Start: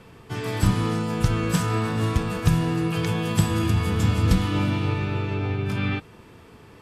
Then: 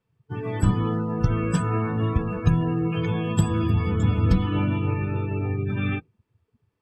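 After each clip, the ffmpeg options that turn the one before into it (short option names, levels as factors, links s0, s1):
-af "afftdn=nr=31:nf=-30"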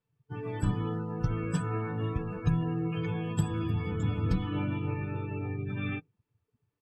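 -af "aecho=1:1:6.8:0.36,volume=0.376"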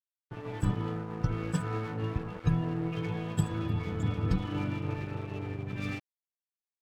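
-af "aeval=exprs='sgn(val(0))*max(abs(val(0))-0.00841,0)':c=same,volume=1.12"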